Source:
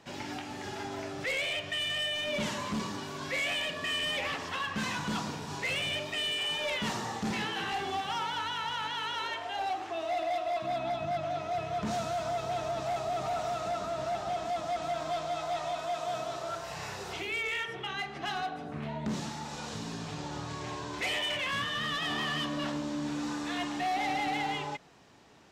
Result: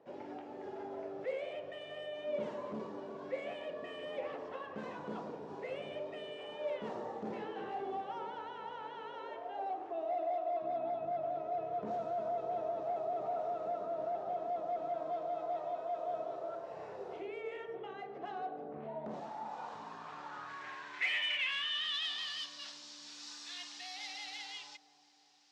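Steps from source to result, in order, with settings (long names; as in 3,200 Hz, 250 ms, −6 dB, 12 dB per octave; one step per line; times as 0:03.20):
delay with a low-pass on its return 351 ms, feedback 63%, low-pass 720 Hz, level −13 dB
band-pass filter sweep 490 Hz → 4,900 Hz, 0:18.73–0:22.50
level +2 dB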